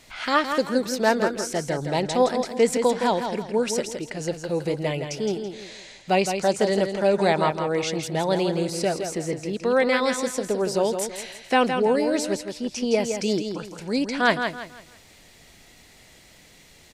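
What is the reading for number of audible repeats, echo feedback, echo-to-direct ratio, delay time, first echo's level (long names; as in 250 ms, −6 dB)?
3, 32%, −6.5 dB, 165 ms, −7.0 dB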